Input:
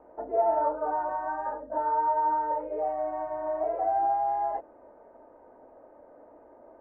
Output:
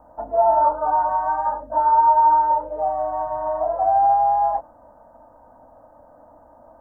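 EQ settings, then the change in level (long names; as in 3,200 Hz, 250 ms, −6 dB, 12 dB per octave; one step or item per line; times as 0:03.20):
dynamic equaliser 1,000 Hz, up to +4 dB, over −40 dBFS, Q 1.5
bass and treble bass +6 dB, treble +5 dB
phaser with its sweep stopped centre 960 Hz, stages 4
+7.5 dB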